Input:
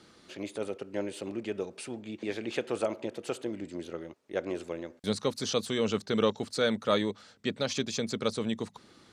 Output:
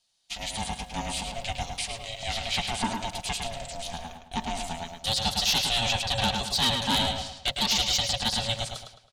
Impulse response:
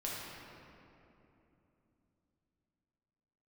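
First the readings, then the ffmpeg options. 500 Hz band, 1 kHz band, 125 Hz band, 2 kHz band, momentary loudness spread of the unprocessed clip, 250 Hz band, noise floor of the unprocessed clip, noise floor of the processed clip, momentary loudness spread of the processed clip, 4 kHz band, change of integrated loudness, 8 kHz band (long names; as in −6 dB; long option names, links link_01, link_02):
−6.5 dB, +9.0 dB, +6.0 dB, +7.0 dB, 11 LU, −3.0 dB, −59 dBFS, −54 dBFS, 12 LU, +13.0 dB, +5.5 dB, +11.0 dB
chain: -filter_complex "[0:a]acrossover=split=4800[link_01][link_02];[link_02]acompressor=threshold=-57dB:ratio=4:attack=1:release=60[link_03];[link_01][link_03]amix=inputs=2:normalize=0,agate=range=-28dB:threshold=-49dB:ratio=16:detection=peak,equalizer=frequency=150:width=1:gain=-13,aecho=1:1:5.3:0.58,asoftclip=type=tanh:threshold=-18.5dB,aexciter=amount=5.5:drive=4.9:freq=2700,aeval=exprs='val(0)*sin(2*PI*340*n/s)':channel_layout=same,aeval=exprs='0.299*sin(PI/2*2.51*val(0)/0.299)':channel_layout=same,asplit=2[link_04][link_05];[link_05]adelay=107,lowpass=frequency=4700:poles=1,volume=-4dB,asplit=2[link_06][link_07];[link_07]adelay=107,lowpass=frequency=4700:poles=1,volume=0.4,asplit=2[link_08][link_09];[link_09]adelay=107,lowpass=frequency=4700:poles=1,volume=0.4,asplit=2[link_10][link_11];[link_11]adelay=107,lowpass=frequency=4700:poles=1,volume=0.4,asplit=2[link_12][link_13];[link_13]adelay=107,lowpass=frequency=4700:poles=1,volume=0.4[link_14];[link_04][link_06][link_08][link_10][link_12][link_14]amix=inputs=6:normalize=0,volume=-7dB"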